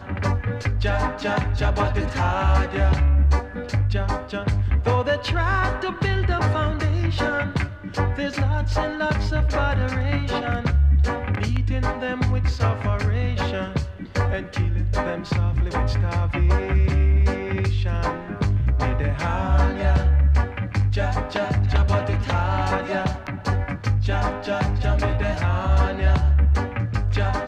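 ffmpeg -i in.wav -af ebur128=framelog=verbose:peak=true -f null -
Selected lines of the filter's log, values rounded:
Integrated loudness:
  I:         -22.5 LUFS
  Threshold: -32.5 LUFS
Loudness range:
  LRA:         2.1 LU
  Threshold: -42.6 LUFS
  LRA low:   -23.8 LUFS
  LRA high:  -21.7 LUFS
True peak:
  Peak:       -5.6 dBFS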